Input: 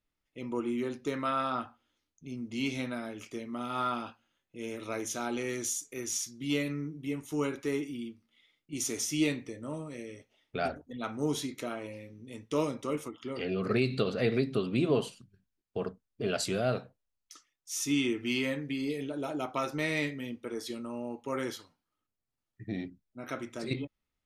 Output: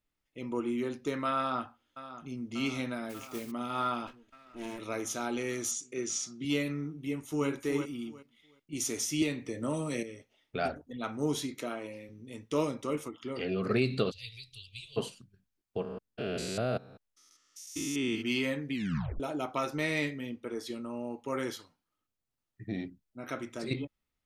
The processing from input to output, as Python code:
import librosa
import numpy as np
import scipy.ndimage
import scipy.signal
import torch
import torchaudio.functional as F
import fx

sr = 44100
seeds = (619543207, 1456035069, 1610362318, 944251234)

y = fx.echo_throw(x, sr, start_s=1.37, length_s=1.15, ms=590, feedback_pct=75, wet_db=-13.0)
y = fx.mod_noise(y, sr, seeds[0], snr_db=11, at=(3.09, 3.5), fade=0.02)
y = fx.lower_of_two(y, sr, delay_ms=3.1, at=(4.07, 4.79))
y = fx.cabinet(y, sr, low_hz=110.0, low_slope=12, high_hz=8000.0, hz=(190.0, 380.0, 890.0), db=(9, 5, -7), at=(5.71, 6.45))
y = fx.echo_throw(y, sr, start_s=6.96, length_s=0.52, ms=370, feedback_pct=20, wet_db=-6.5)
y = fx.band_squash(y, sr, depth_pct=100, at=(9.22, 10.03))
y = fx.highpass(y, sr, hz=140.0, slope=12, at=(11.59, 12.09))
y = fx.cheby2_bandstop(y, sr, low_hz=160.0, high_hz=1600.0, order=4, stop_db=40, at=(14.1, 14.96), fade=0.02)
y = fx.spec_steps(y, sr, hold_ms=200, at=(15.81, 18.21), fade=0.02)
y = fx.high_shelf(y, sr, hz=4500.0, db=-4.5, at=(20.18, 21.0))
y = fx.edit(y, sr, fx.tape_stop(start_s=18.73, length_s=0.47), tone=tone)